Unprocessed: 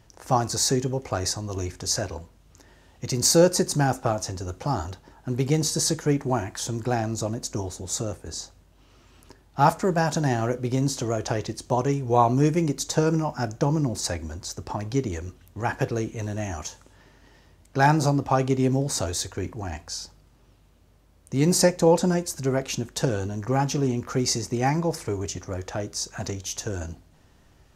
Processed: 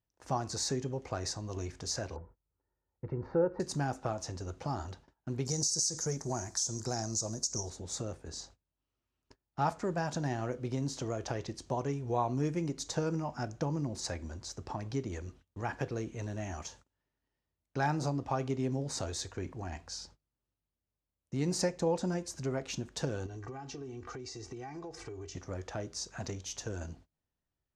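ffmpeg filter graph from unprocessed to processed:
-filter_complex "[0:a]asettb=1/sr,asplit=3[a][b][c];[a]atrim=end=2.164[d];[b]atrim=start=2.16:end=3.6,asetpts=PTS-STARTPTS,afade=t=in:d=0.004:c=qsin,afade=t=out:st=1.436:d=0.004:c=qsin,lowpass=f=1.5k:w=0.5412,lowpass=f=1.5k:w=1.3066,aecho=1:1:2.2:0.42,atrim=end_sample=63504[e];[c]atrim=start=3.596[f];[d][e]acrossfade=d=0.004:c1=hsin:c2=qsin[g];[g][f]acrossfade=d=0.004:c1=qsin:c2=hsin,asettb=1/sr,asplit=3[h][i][j];[h]atrim=end=5.454[k];[i]atrim=start=5.45:end=7.7,asetpts=PTS-STARTPTS,afade=t=in:d=0.004:c=qsin,afade=t=out:st=2.246:d=0.004:c=qsin,highshelf=f=4.1k:t=q:w=3:g=13,bandreject=f=290:w=6.4,acompressor=threshold=-17dB:ratio=3:attack=3.2:release=140:knee=1:detection=peak[l];[j]atrim=start=7.696[m];[k][l]acrossfade=d=0.004:c1=hsin:c2=qsin[n];[n][m]acrossfade=d=0.004:c1=qsin:c2=hsin,asettb=1/sr,asplit=3[o][p][q];[o]atrim=end=23.264[r];[p]atrim=start=23.26:end=25.35,asetpts=PTS-STARTPTS,afade=t=in:d=0.004:c=qsin,afade=t=out:st=2.086:d=0.004:c=qsin,lowpass=7.2k,aecho=1:1:2.6:0.83,atrim=end_sample=92169,acompressor=threshold=-32dB:ratio=12:attack=3.2:release=140:knee=1:detection=peak[s];[q]atrim=start=25.346[t];[r][s]acrossfade=d=0.004:c1=hsin:c2=qsin[u];[u][t]acrossfade=d=0.004:c1=qsin:c2=hsin,agate=range=-25dB:threshold=-46dB:ratio=16:detection=peak,lowpass=7.2k,acompressor=threshold=-27dB:ratio=1.5,volume=-7.5dB"

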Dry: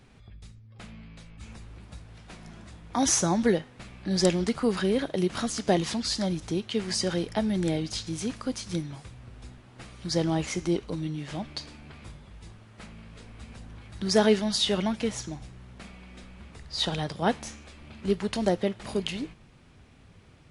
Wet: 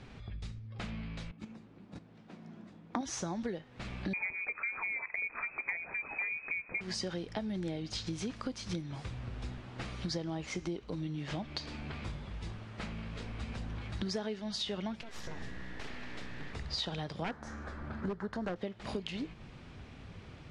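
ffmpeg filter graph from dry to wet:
-filter_complex "[0:a]asettb=1/sr,asplit=3[a][b][c];[a]atrim=end=1.314[d];[b]atrim=start=1.31:end=3.01,asetpts=PTS-STARTPTS,afade=t=in:d=0.004:c=qsin,afade=t=out:st=1.696:d=0.004:c=qsin,agate=range=-14dB:threshold=-41dB:ratio=16:release=100:detection=peak,highpass=f=210:t=q:w=1.8,tiltshelf=f=1.2k:g=4.5[e];[c]atrim=start=3.006[f];[d][e]acrossfade=d=0.004:c1=hsin:c2=qsin[g];[g][f]acrossfade=d=0.004:c1=qsin:c2=hsin,asettb=1/sr,asplit=3[h][i][j];[h]atrim=end=4.134[k];[i]atrim=start=4.13:end=6.81,asetpts=PTS-STARTPTS,afade=t=in:d=0.004:c=qsin,afade=t=out:st=2.676:d=0.004:c=qsin,lowpass=f=2.2k:t=q:w=0.5098,lowpass=f=2.2k:t=q:w=0.6013,lowpass=f=2.2k:t=q:w=0.9,lowpass=f=2.2k:t=q:w=2.563,afreqshift=-2600,lowshelf=f=430:g=8.5[l];[j]atrim=start=6.806[m];[k][l]acrossfade=d=0.004:c1=hsin:c2=qsin[n];[n][m]acrossfade=d=0.004:c1=qsin:c2=hsin,asettb=1/sr,asplit=3[o][p][q];[o]atrim=end=15.014[r];[p]atrim=start=15.01:end=16.53,asetpts=PTS-STARTPTS,afade=t=in:d=0.004:c=qsin,afade=t=out:st=1.516:d=0.004:c=qsin,acompressor=threshold=-39dB:ratio=12:attack=3.2:release=140:knee=1:detection=peak,aeval=exprs='val(0)+0.002*sin(2*PI*1800*n/s)':c=same,aeval=exprs='abs(val(0))':c=same[s];[q]atrim=start=16.526[t];[r][s]acrossfade=d=0.004:c1=hsin:c2=qsin[u];[u][t]acrossfade=d=0.004:c1=qsin:c2=hsin,asettb=1/sr,asplit=3[v][w][x];[v]atrim=end=17.244[y];[w]atrim=start=17.24:end=18.56,asetpts=PTS-STARTPTS,afade=t=in:d=0.004:c=qsin,afade=t=out:st=1.316:d=0.004:c=qsin,highshelf=f=2k:t=q:w=3:g=-8.5,aeval=exprs='0.119*(abs(mod(val(0)/0.119+3,4)-2)-1)':c=same[z];[x]atrim=start=18.556[aa];[y][z]acrossfade=d=0.004:c1=hsin:c2=qsin[ab];[ab][aa]acrossfade=d=0.004:c1=qsin:c2=hsin,lowpass=5.4k,acompressor=threshold=-39dB:ratio=12,volume=5dB"

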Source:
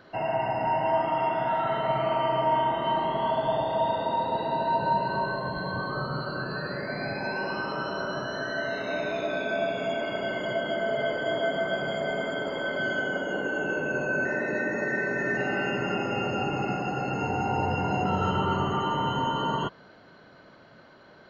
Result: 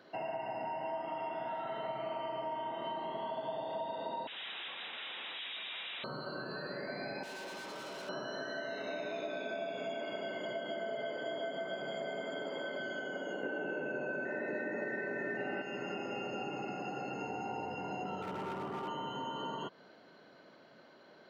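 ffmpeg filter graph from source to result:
-filter_complex "[0:a]asettb=1/sr,asplit=3[a][b][c];[a]atrim=end=4.274[d];[b]atrim=start=4.27:end=6.04,asetpts=PTS-STARTPTS,afade=t=in:d=0.004:c=qsin,afade=t=out:st=1.766:d=0.004:c=qsin,bandreject=f=116.8:t=h:w=4,bandreject=f=233.6:t=h:w=4,bandreject=f=350.4:t=h:w=4,bandreject=f=467.2:t=h:w=4,bandreject=f=584:t=h:w=4,bandreject=f=700.8:t=h:w=4,bandreject=f=817.6:t=h:w=4,bandreject=f=934.4:t=h:w=4,bandreject=f=1.0512k:t=h:w=4,bandreject=f=1.168k:t=h:w=4,bandreject=f=1.2848k:t=h:w=4,bandreject=f=1.4016k:t=h:w=4,bandreject=f=1.5184k:t=h:w=4,bandreject=f=1.6352k:t=h:w=4,bandreject=f=1.752k:t=h:w=4,bandreject=f=1.8688k:t=h:w=4,bandreject=f=1.9856k:t=h:w=4,bandreject=f=2.1024k:t=h:w=4,bandreject=f=2.2192k:t=h:w=4,bandreject=f=2.336k:t=h:w=4,bandreject=f=2.4528k:t=h:w=4,bandreject=f=2.5696k:t=h:w=4,bandreject=f=2.6864k:t=h:w=4,bandreject=f=2.8032k:t=h:w=4,bandreject=f=2.92k:t=h:w=4,bandreject=f=3.0368k:t=h:w=4,bandreject=f=3.1536k:t=h:w=4,bandreject=f=3.2704k:t=h:w=4,aeval=exprs='0.0237*(abs(mod(val(0)/0.0237+3,4)-2)-1)':c=same,lowpass=f=3.3k:t=q:w=0.5098,lowpass=f=3.3k:t=q:w=0.6013,lowpass=f=3.3k:t=q:w=0.9,lowpass=f=3.3k:t=q:w=2.563,afreqshift=-3900[e];[c]atrim=start=6.036[f];[d][e]acrossfade=d=0.004:c1=hsin:c2=qsin[g];[g][f]acrossfade=d=0.004:c1=qsin:c2=hsin,asettb=1/sr,asplit=3[h][i][j];[h]atrim=end=7.234[k];[i]atrim=start=7.23:end=8.09,asetpts=PTS-STARTPTS,afade=t=in:d=0.004:c=qsin,afade=t=out:st=0.856:d=0.004:c=qsin,bandreject=f=50:t=h:w=6,bandreject=f=100:t=h:w=6,bandreject=f=150:t=h:w=6,bandreject=f=200:t=h:w=6,bandreject=f=250:t=h:w=6,bandreject=f=300:t=h:w=6,bandreject=f=350:t=h:w=6,bandreject=f=400:t=h:w=6,asoftclip=type=hard:threshold=-37dB[l];[j]atrim=start=8.086[m];[k][l]acrossfade=d=0.004:c1=hsin:c2=qsin[n];[n][m]acrossfade=d=0.004:c1=qsin:c2=hsin,asettb=1/sr,asplit=3[o][p][q];[o]atrim=end=13.434[r];[p]atrim=start=13.43:end=15.62,asetpts=PTS-STARTPTS,afade=t=in:d=0.004:c=qsin,afade=t=out:st=2.186:d=0.004:c=qsin,lowpass=2.9k,bandreject=f=1.1k:w=15,acontrast=82[s];[q]atrim=start=15.616[t];[r][s]acrossfade=d=0.004:c1=hsin:c2=qsin[u];[u][t]acrossfade=d=0.004:c1=qsin:c2=hsin,asettb=1/sr,asplit=3[v][w][x];[v]atrim=end=18.224[y];[w]atrim=start=18.22:end=18.88,asetpts=PTS-STARTPTS,afade=t=in:d=0.004:c=qsin,afade=t=out:st=0.656:d=0.004:c=qsin,lowpass=f=2.2k:w=0.5412,lowpass=f=2.2k:w=1.3066,asoftclip=type=hard:threshold=-23.5dB[z];[x]atrim=start=18.876[aa];[y][z]acrossfade=d=0.004:c1=hsin:c2=qsin[ab];[ab][aa]acrossfade=d=0.004:c1=qsin:c2=hsin,acompressor=threshold=-31dB:ratio=4,highpass=220,equalizer=f=1.3k:t=o:w=1.1:g=-4.5,volume=-4dB"

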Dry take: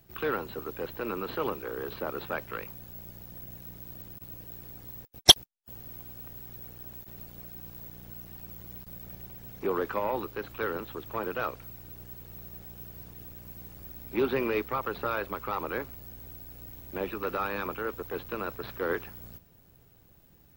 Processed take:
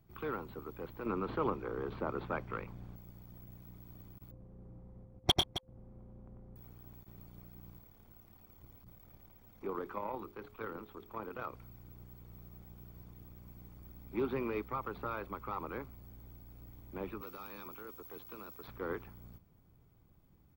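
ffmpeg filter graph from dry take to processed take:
-filter_complex "[0:a]asettb=1/sr,asplit=3[a][b][c];[a]atrim=end=1.064[d];[b]atrim=start=1.06:end=2.96,asetpts=PTS-STARTPTS,afade=t=in:d=0.004:c=qsin,afade=t=out:st=1.896:d=0.004:c=qsin,aemphasis=mode=reproduction:type=50fm,acontrast=34[e];[c]atrim=start=2.956[f];[d][e]acrossfade=d=0.004:c1=hsin:c2=qsin[g];[g][f]acrossfade=d=0.004:c1=qsin:c2=hsin,asettb=1/sr,asplit=3[h][i][j];[h]atrim=end=4.314[k];[i]atrim=start=4.31:end=6.56,asetpts=PTS-STARTPTS,afade=t=in:d=0.004:c=qsin,afade=t=out:st=2.246:d=0.004:c=qsin,adynamicsmooth=sensitivity=0.5:basefreq=920,aeval=exprs='val(0)+0.00224*sin(2*PI*520*n/s)':c=same,aecho=1:1:95|119|267:0.708|0.251|0.251,atrim=end_sample=99225[l];[j]atrim=start=6.556[m];[k][l]acrossfade=d=0.004:c1=hsin:c2=qsin[n];[n][m]acrossfade=d=0.004:c1=qsin:c2=hsin,asettb=1/sr,asplit=3[o][p][q];[o]atrim=end=7.784[r];[p]atrim=start=7.78:end=11.53,asetpts=PTS-STARTPTS,afade=t=in:d=0.004:c=qsin,afade=t=out:st=3.746:d=0.004:c=qsin,bandreject=f=60:t=h:w=6,bandreject=f=120:t=h:w=6,bandreject=f=180:t=h:w=6,bandreject=f=240:t=h:w=6,bandreject=f=300:t=h:w=6,bandreject=f=360:t=h:w=6,bandreject=f=420:t=h:w=6,tremolo=f=36:d=0.4[s];[q]atrim=start=11.526[t];[r][s]acrossfade=d=0.004:c1=hsin:c2=qsin[u];[u][t]acrossfade=d=0.004:c1=qsin:c2=hsin,asettb=1/sr,asplit=3[v][w][x];[v]atrim=end=17.214[y];[w]atrim=start=17.21:end=18.68,asetpts=PTS-STARTPTS,afade=t=in:d=0.004:c=qsin,afade=t=out:st=1.466:d=0.004:c=qsin,acrossover=split=300|3000[z][aa][ab];[aa]acompressor=threshold=-43dB:ratio=2.5:attack=3.2:release=140:knee=2.83:detection=peak[ac];[z][ac][ab]amix=inputs=3:normalize=0,bass=f=250:g=-11,treble=f=4k:g=9,bandreject=f=50:t=h:w=6,bandreject=f=100:t=h:w=6,bandreject=f=150:t=h:w=6[ad];[x]atrim=start=18.676[ae];[y][ad]acrossfade=d=0.004:c1=hsin:c2=qsin[af];[af][ae]acrossfade=d=0.004:c1=qsin:c2=hsin,highshelf=f=2k:g=-11,aecho=1:1:0.9:0.34,volume=-6dB"

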